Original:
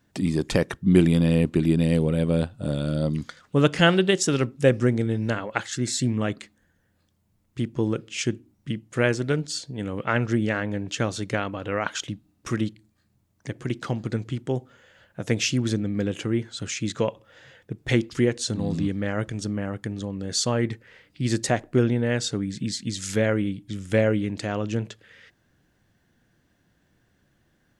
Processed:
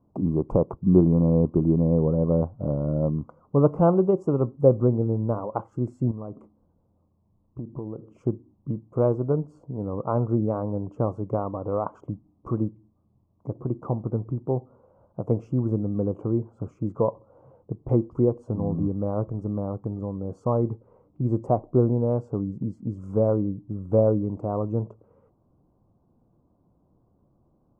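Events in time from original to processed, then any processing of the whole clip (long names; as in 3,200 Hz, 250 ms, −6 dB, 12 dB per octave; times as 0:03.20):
0:06.11–0:08.15: downward compressor, threshold −32 dBFS
whole clip: dynamic equaliser 250 Hz, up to −4 dB, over −35 dBFS, Q 1.1; elliptic low-pass filter 1,100 Hz, stop band 40 dB; level +3 dB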